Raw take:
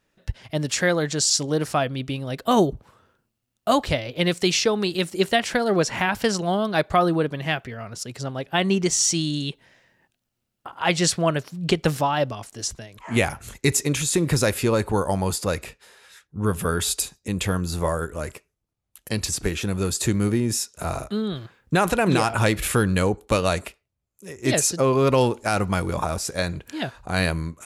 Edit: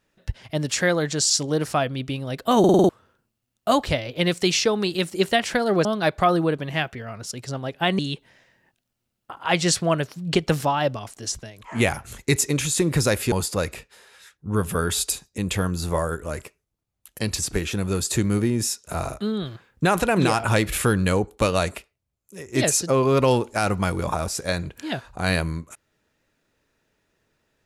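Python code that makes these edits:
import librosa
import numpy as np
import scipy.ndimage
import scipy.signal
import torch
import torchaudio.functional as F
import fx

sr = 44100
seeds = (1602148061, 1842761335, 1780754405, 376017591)

y = fx.edit(x, sr, fx.stutter_over(start_s=2.59, slice_s=0.05, count=6),
    fx.cut(start_s=5.85, length_s=0.72),
    fx.cut(start_s=8.71, length_s=0.64),
    fx.cut(start_s=14.68, length_s=0.54), tone=tone)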